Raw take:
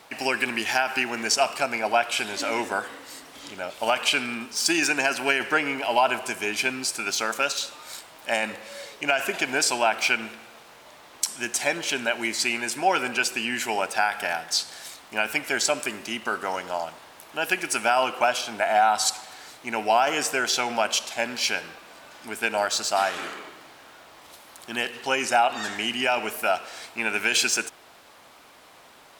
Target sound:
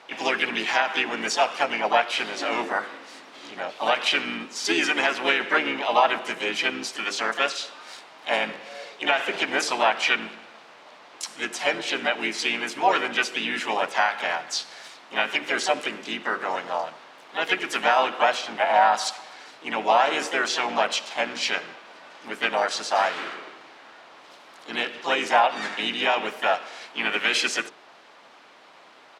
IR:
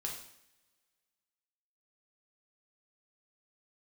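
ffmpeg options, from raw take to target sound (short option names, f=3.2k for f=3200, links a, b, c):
-filter_complex "[0:a]highpass=200,lowpass=4.1k,bandreject=f=50:t=h:w=6,bandreject=f=100:t=h:w=6,bandreject=f=150:t=h:w=6,bandreject=f=200:t=h:w=6,bandreject=f=250:t=h:w=6,bandreject=f=300:t=h:w=6,bandreject=f=350:t=h:w=6,bandreject=f=400:t=h:w=6,bandreject=f=450:t=h:w=6,bandreject=f=500:t=h:w=6,asplit=3[a][b][c];[b]asetrate=35002,aresample=44100,atempo=1.25992,volume=-11dB[d];[c]asetrate=55563,aresample=44100,atempo=0.793701,volume=-5dB[e];[a][d][e]amix=inputs=3:normalize=0"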